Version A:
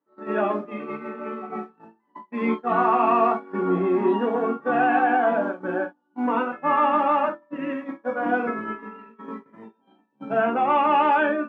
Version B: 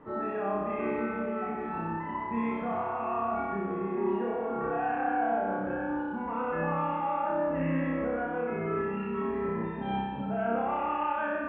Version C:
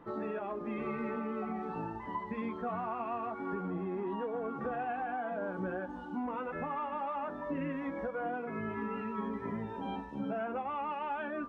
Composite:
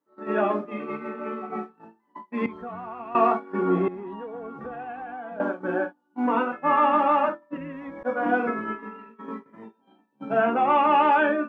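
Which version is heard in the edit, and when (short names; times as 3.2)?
A
2.46–3.15 from C
3.88–5.4 from C
7.57–8.03 from C
not used: B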